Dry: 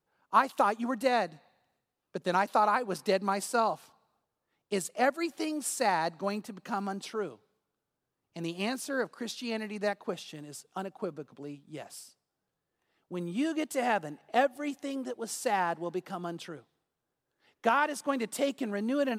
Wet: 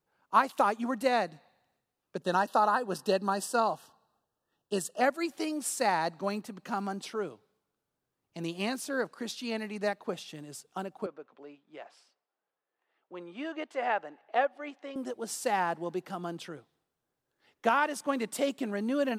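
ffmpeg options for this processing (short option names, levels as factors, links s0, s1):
-filter_complex "[0:a]asettb=1/sr,asplit=3[s0][s1][s2];[s0]atrim=end=2.224[s3];[s1]atrim=start=2.22:end=5.01,asetpts=PTS-STARTPTS,afade=t=in:d=0.004:c=qsin,afade=t=out:st=2.786:d=0.004:c=qsin,asuperstop=centerf=2200:order=20:qfactor=3.4[s4];[s2]atrim=start=5.006[s5];[s3][s4]acrossfade=d=0.004:c1=hsin:c2=qsin[s6];[s6][s5]acrossfade=d=0.004:c1=qsin:c2=hsin,asettb=1/sr,asplit=3[s7][s8][s9];[s7]atrim=end=11.064[s10];[s8]atrim=start=11.06:end=14.96,asetpts=PTS-STARTPTS,afade=t=in:d=0.004:c=qsin,afade=t=out:st=3.896:d=0.004:c=qsin,highpass=480,lowpass=2700[s11];[s9]atrim=start=14.956[s12];[s10][s11]acrossfade=d=0.004:c1=hsin:c2=qsin[s13];[s13][s12]acrossfade=d=0.004:c1=qsin:c2=hsin"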